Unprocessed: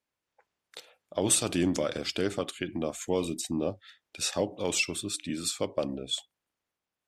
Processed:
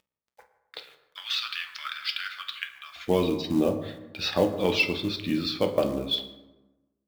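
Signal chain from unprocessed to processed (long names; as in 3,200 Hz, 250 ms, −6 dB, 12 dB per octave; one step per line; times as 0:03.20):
0:00.78–0:02.96: elliptic high-pass filter 1,300 Hz, stop band 70 dB
downward expander −56 dBFS
Butterworth low-pass 4,800 Hz 48 dB per octave
upward compression, threshold −48 dBFS
log-companded quantiser 6 bits
convolution reverb RT60 1.1 s, pre-delay 7 ms, DRR 5 dB
level +5 dB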